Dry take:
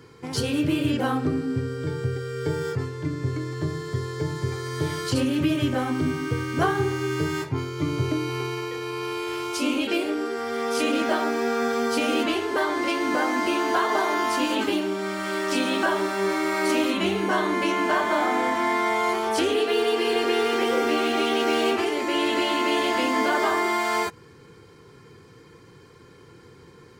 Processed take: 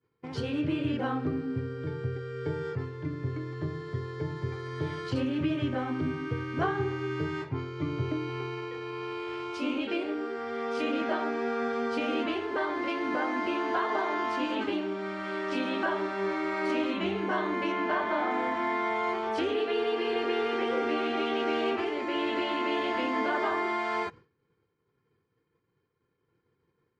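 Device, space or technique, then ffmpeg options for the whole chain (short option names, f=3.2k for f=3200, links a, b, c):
hearing-loss simulation: -filter_complex "[0:a]asettb=1/sr,asplit=3[a][b][c];[a]atrim=end=17.724[d];[b]atrim=start=17.72:end=18.31,asetpts=PTS-STARTPTS,afade=t=in:d=0.004:c=qsin,afade=t=out:st=0.586:d=0.004:c=qsin,lowpass=6.3k[e];[c]atrim=start=18.306[f];[d][e]acrossfade=d=0.004:c1=hsin:c2=qsin[g];[g][f]acrossfade=d=0.004:c1=qsin:c2=hsin,lowpass=3.1k,agate=range=-33dB:threshold=-36dB:ratio=3:detection=peak,volume=-6dB"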